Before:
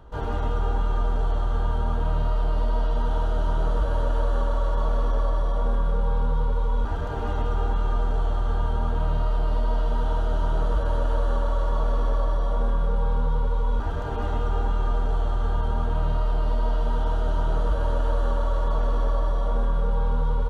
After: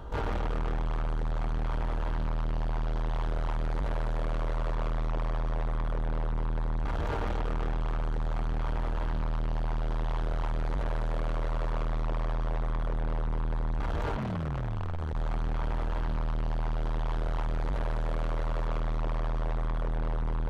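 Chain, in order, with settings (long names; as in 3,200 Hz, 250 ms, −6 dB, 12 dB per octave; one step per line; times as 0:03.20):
in parallel at +0.5 dB: brickwall limiter −22 dBFS, peak gain reduction 9 dB
on the sum: soft clipping −27.5 dBFS, distortion −8 dB
0:14.16–0:15.13: ring modulation 190 Hz → 35 Hz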